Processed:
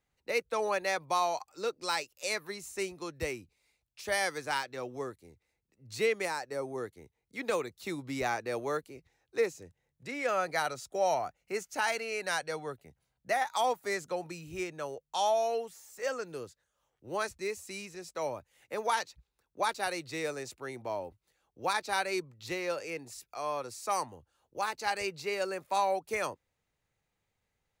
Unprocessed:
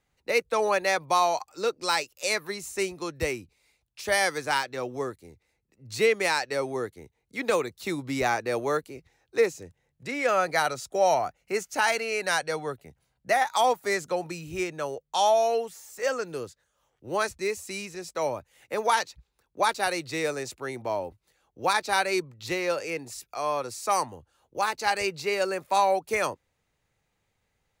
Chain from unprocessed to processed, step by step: 6.25–6.78 s: peaking EQ 3.1 kHz -11 dB 1.5 oct; trim -6.5 dB

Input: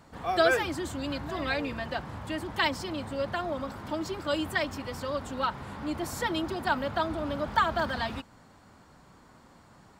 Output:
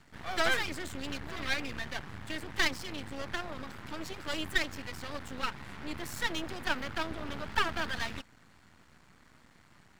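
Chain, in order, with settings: ten-band graphic EQ 500 Hz -7 dB, 1 kHz -4 dB, 2 kHz +7 dB; half-wave rectifier

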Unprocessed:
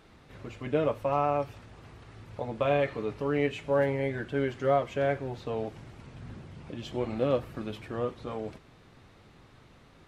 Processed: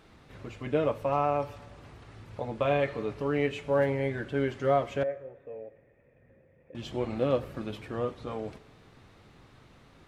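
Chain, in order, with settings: 5.03–6.75 s: cascade formant filter e; plate-style reverb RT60 1.6 s, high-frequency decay 0.55×, DRR 19.5 dB

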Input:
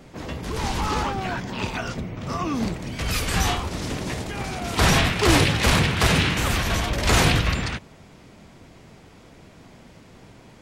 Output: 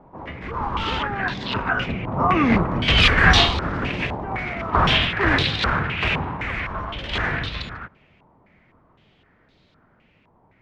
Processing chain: Doppler pass-by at 2.77 s, 16 m/s, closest 10 m; step-sequenced low-pass 3.9 Hz 950–3900 Hz; trim +8 dB

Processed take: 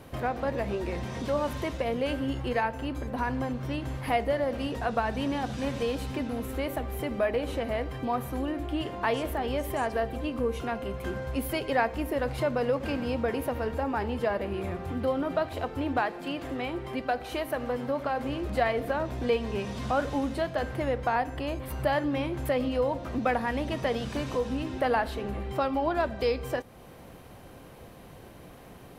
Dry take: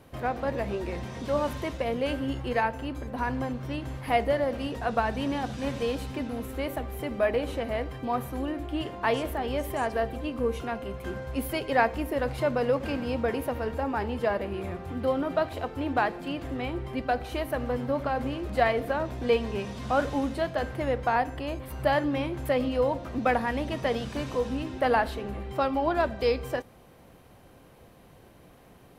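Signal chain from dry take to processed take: 16.01–18.29 s: bass shelf 150 Hz -11 dB; compression 1.5:1, threshold -42 dBFS, peak gain reduction 9 dB; trim +5.5 dB

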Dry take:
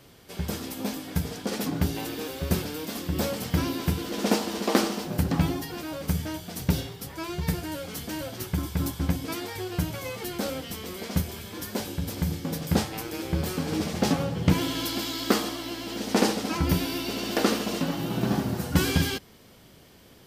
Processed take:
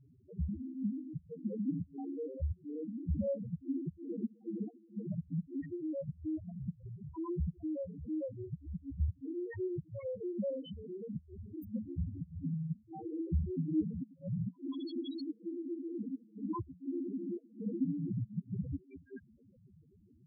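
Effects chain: 14.47–14.97 s: high-pass 280 Hz 6 dB/octave; inverted gate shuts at -14 dBFS, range -30 dB; loudest bins only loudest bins 2

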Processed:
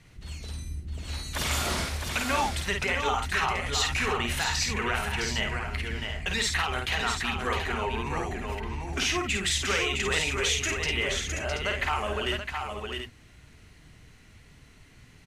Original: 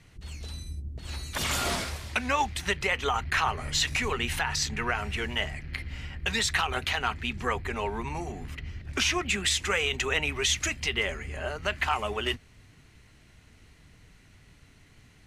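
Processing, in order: in parallel at -1 dB: peak limiter -21.5 dBFS, peak gain reduction 7.5 dB; on the sum: multi-tap echo 51/660/730 ms -4.5/-5.5/-8.5 dB; trim -5.5 dB

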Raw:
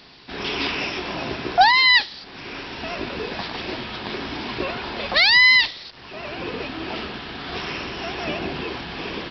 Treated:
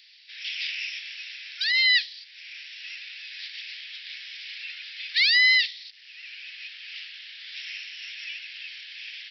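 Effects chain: steep high-pass 1.9 kHz 48 dB/octave; trim -4 dB

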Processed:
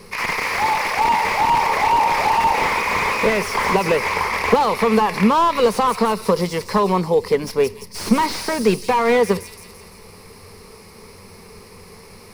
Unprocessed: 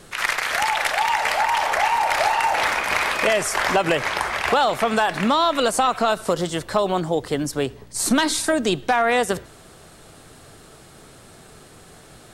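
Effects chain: median filter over 3 samples; rippled EQ curve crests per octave 0.86, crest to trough 14 dB; feedback echo behind a high-pass 170 ms, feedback 53%, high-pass 5.3 kHz, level -5 dB; slew-rate limiter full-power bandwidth 170 Hz; trim +2 dB

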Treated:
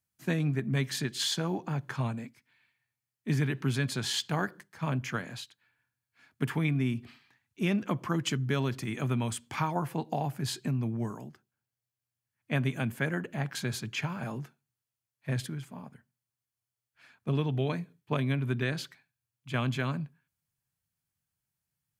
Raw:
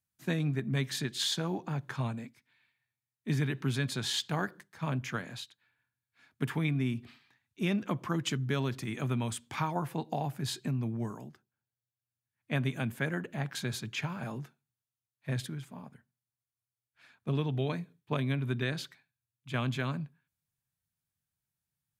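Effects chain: band-stop 3.7 kHz, Q 14; trim +2 dB

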